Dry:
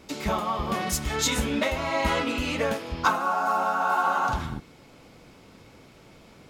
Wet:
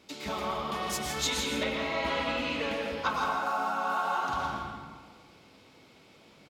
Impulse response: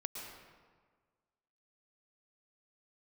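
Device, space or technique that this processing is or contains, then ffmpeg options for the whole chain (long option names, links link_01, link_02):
PA in a hall: -filter_complex "[0:a]highpass=frequency=130:poles=1,equalizer=frequency=3600:width_type=o:width=1.2:gain=6,aecho=1:1:165:0.316[link_01];[1:a]atrim=start_sample=2205[link_02];[link_01][link_02]afir=irnorm=-1:irlink=0,asettb=1/sr,asplit=3[link_03][link_04][link_05];[link_03]atrim=end=1.634[link_06];[link_04]atrim=start=1.63:end=3.14,asetpts=PTS-STARTPTS,afade=type=in:duration=0.004:curve=qsin,afade=type=out:start_time=1.506:duration=0.004:curve=qsin,acrossover=split=5000[link_07][link_08];[link_08]acompressor=threshold=-50dB:ratio=4:attack=1:release=60[link_09];[link_07][link_09]amix=inputs=2:normalize=0[link_10];[link_05]atrim=start=3.136[link_11];[link_06][link_10]acrossfade=duration=0.004:curve1=hsin:curve2=qsin[link_12];[link_12][link_11]acrossfade=duration=0.004:curve1=qsin:curve2=hsin,volume=-5.5dB"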